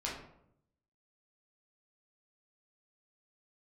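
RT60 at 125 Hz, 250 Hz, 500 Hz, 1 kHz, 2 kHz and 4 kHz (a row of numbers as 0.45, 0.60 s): 1.0, 0.90, 0.80, 0.70, 0.55, 0.40 s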